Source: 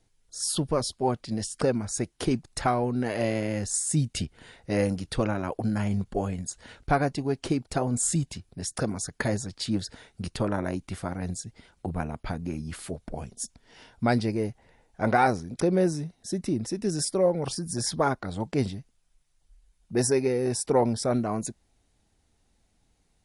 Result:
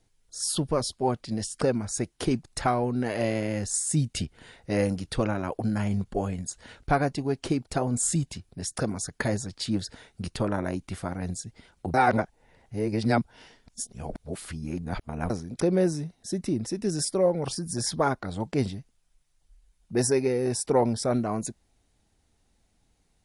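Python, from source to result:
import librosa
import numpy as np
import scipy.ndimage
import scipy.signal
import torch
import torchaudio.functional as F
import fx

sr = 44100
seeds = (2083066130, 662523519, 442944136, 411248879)

y = fx.edit(x, sr, fx.reverse_span(start_s=11.94, length_s=3.36), tone=tone)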